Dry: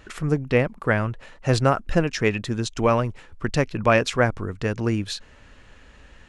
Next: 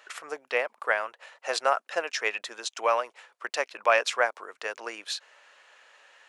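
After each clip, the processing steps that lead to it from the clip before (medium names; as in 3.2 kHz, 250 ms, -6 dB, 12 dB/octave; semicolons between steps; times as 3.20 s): high-pass 580 Hz 24 dB/octave; trim -1.5 dB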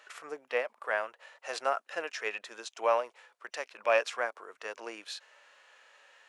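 harmonic-percussive split percussive -10 dB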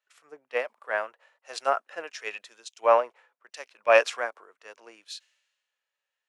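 three bands expanded up and down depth 100%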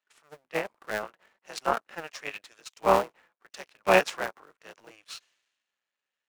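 cycle switcher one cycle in 3, muted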